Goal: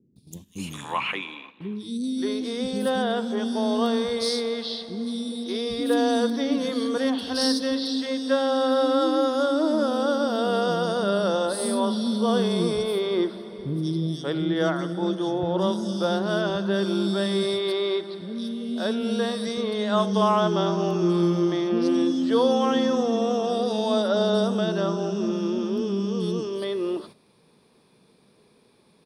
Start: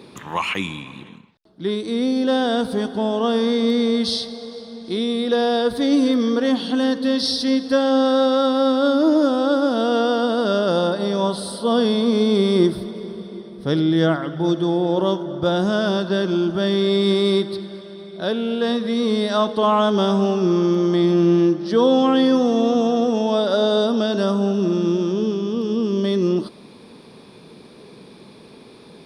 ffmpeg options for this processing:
-filter_complex "[0:a]crystalizer=i=1:c=0,acrossover=split=300|3900[s0][s1][s2];[s2]adelay=160[s3];[s1]adelay=580[s4];[s0][s4][s3]amix=inputs=3:normalize=0,agate=range=0.282:threshold=0.0112:ratio=16:detection=peak,volume=0.668"

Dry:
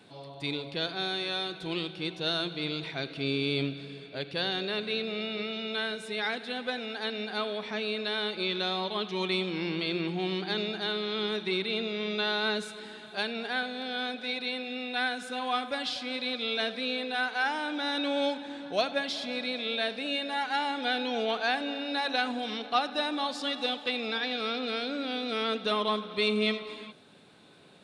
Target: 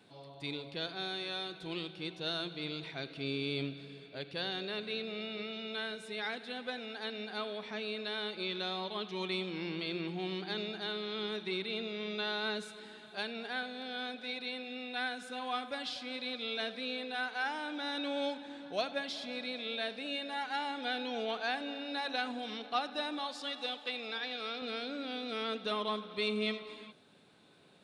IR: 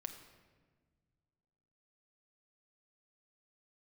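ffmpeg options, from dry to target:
-filter_complex "[0:a]asettb=1/sr,asplit=3[s0][s1][s2];[s0]atrim=end=23.194[s3];[s1]atrim=start=23.19:end=24.62,asetpts=PTS-STARTPTS,afade=t=in:d=0.004:c=qsin,afade=t=out:st=1.426:d=0.004:c=qsin,highpass=f=390:p=1[s4];[s2]atrim=start=24.616[s5];[s3][s4]acrossfade=d=0.004:c1=hsin:c2=qsin[s6];[s6][s5]acrossfade=d=0.004:c1=qsin:c2=hsin,volume=0.473"

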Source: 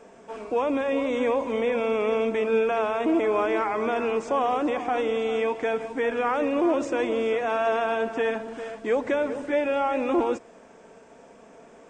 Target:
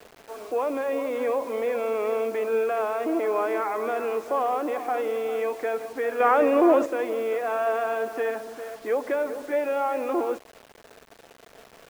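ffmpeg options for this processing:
-filter_complex "[0:a]asettb=1/sr,asplit=3[s0][s1][s2];[s0]atrim=end=6.204[s3];[s1]atrim=start=6.2:end=6.86,asetpts=PTS-STARTPTS,afade=t=in:d=0.004:c=qsin,afade=t=out:st=0.656:d=0.004:c=qsin,acontrast=90[s4];[s2]atrim=start=6.856[s5];[s3][s4]acrossfade=d=0.004:c1=hsin:c2=qsin[s6];[s6][s5]acrossfade=d=0.004:c1=qsin:c2=hsin,acrossover=split=300 2100:gain=0.141 1 0.251[s7][s8][s9];[s7][s8][s9]amix=inputs=3:normalize=0,bandreject=f=930:w=13,acrusher=bits=7:mix=0:aa=0.000001"

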